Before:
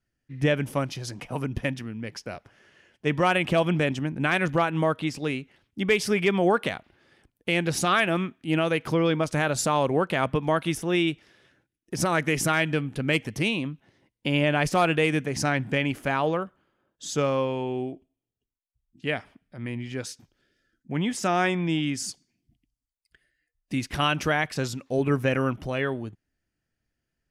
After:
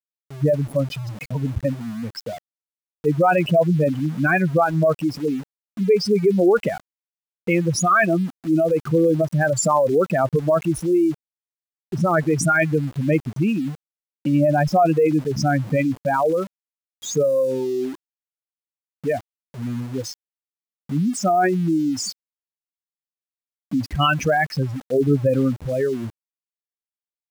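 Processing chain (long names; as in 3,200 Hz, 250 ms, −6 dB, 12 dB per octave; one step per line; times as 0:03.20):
expanding power law on the bin magnitudes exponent 3.2
automatic gain control gain up to 3.5 dB
centre clipping without the shift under −38 dBFS
level +3 dB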